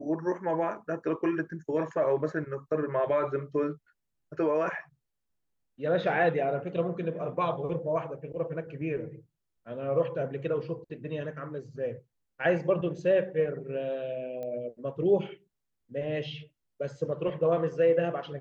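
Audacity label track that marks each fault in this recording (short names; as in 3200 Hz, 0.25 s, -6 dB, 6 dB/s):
14.430000	14.430000	pop -27 dBFS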